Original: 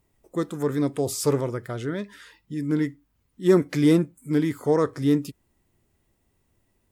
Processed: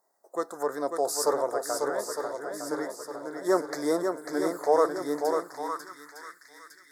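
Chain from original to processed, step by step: Chebyshev band-stop 1.6–4.7 kHz, order 2; shuffle delay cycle 908 ms, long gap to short 1.5:1, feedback 49%, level -5.5 dB; high-pass sweep 660 Hz -> 1.9 kHz, 5.34–6.40 s

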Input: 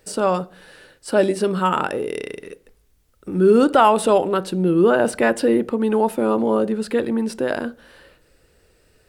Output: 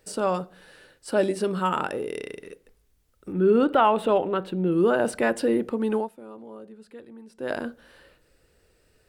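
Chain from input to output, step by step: 3.32–4.72 s: high-order bell 7.5 kHz -14 dB; 5.96–7.50 s: dip -18 dB, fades 0.13 s; trim -5.5 dB

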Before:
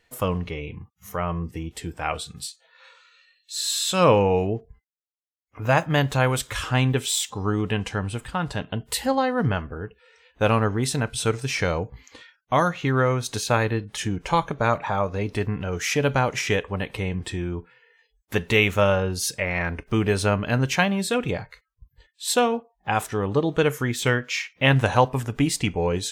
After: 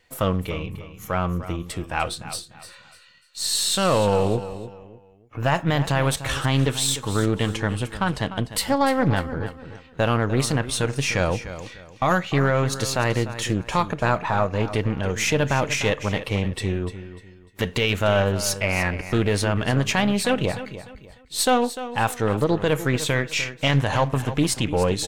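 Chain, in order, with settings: partial rectifier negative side -3 dB; peak limiter -13.5 dBFS, peak gain reduction 9 dB; on a send: feedback delay 311 ms, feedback 31%, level -13 dB; on the sum: speed mistake 24 fps film run at 25 fps; loudspeaker Doppler distortion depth 0.25 ms; trim +4 dB

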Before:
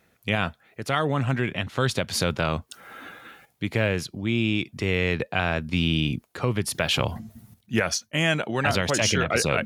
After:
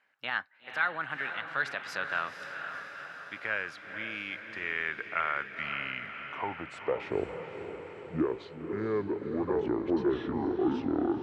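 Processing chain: gliding tape speed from 119% -> 53%; band-pass sweep 1.5 kHz -> 360 Hz, 5.99–7.25 s; echo that smears into a reverb 491 ms, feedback 64%, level -8.5 dB

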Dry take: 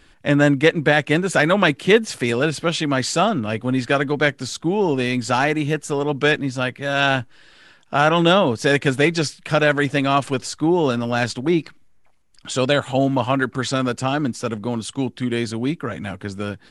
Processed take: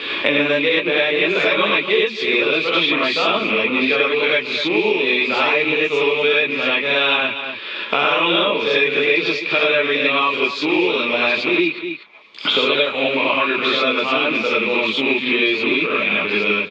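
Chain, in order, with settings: rattle on loud lows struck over -32 dBFS, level -23 dBFS; in parallel at 0 dB: peak limiter -11.5 dBFS, peak gain reduction 9 dB; on the sum: cabinet simulation 360–3900 Hz, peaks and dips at 450 Hz +5 dB, 740 Hz -8 dB, 1.1 kHz +4 dB, 1.6 kHz -7 dB, 2.4 kHz +10 dB, 3.6 kHz +10 dB; on a send: delay 243 ms -15 dB; on the sum: gated-style reverb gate 130 ms rising, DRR -7.5 dB; three bands compressed up and down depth 100%; trim -12 dB

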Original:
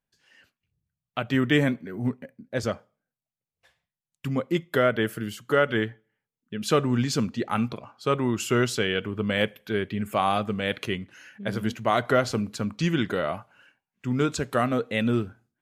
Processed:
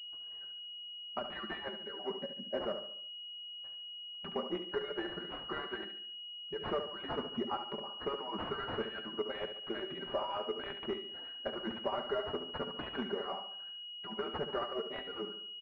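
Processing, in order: harmonic-percussive separation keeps percussive; high-pass 410 Hz 6 dB/octave; comb 5.1 ms, depth 87%; compression 4:1, threshold -34 dBFS, peak gain reduction 15 dB; overload inside the chain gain 25.5 dB; flange 0.13 Hz, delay 7 ms, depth 6.3 ms, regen +77%; feedback delay 71 ms, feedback 44%, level -8.5 dB; class-D stage that switches slowly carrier 2.9 kHz; trim +5 dB

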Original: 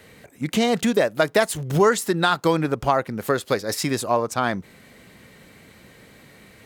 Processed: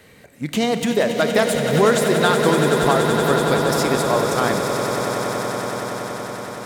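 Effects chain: echo with a slow build-up 94 ms, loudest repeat 8, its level -10 dB; Schroeder reverb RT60 3.2 s, combs from 27 ms, DRR 10 dB

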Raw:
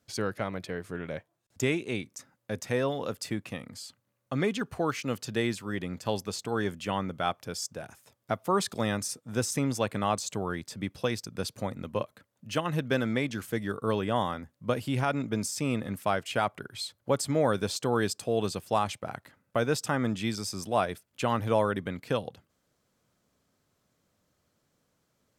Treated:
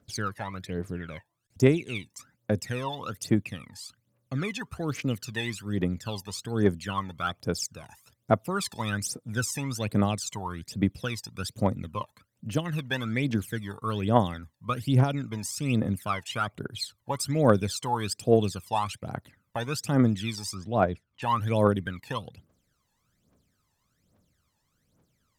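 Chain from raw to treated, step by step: 20.54–21.22 s: Bessel low-pass 2.5 kHz, order 2; phaser 1.2 Hz, delay 1.2 ms, feedback 80%; trim -3.5 dB

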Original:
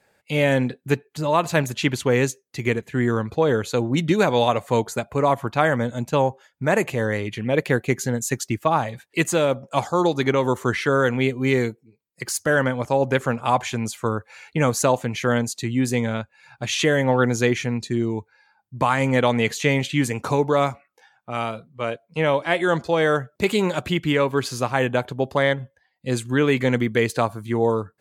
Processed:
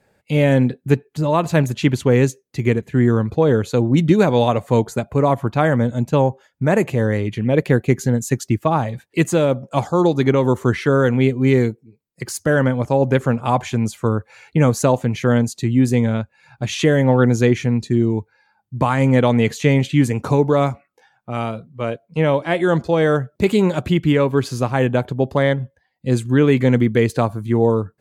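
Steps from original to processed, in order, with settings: bass shelf 500 Hz +10.5 dB; trim -2 dB

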